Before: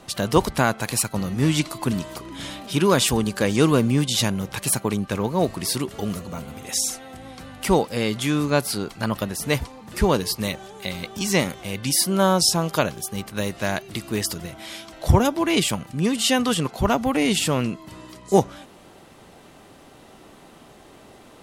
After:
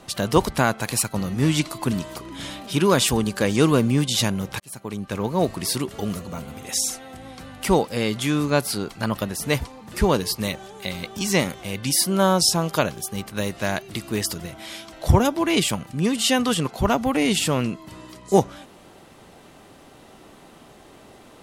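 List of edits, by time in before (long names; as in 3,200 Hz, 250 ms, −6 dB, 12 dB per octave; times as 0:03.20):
0:04.60–0:05.33: fade in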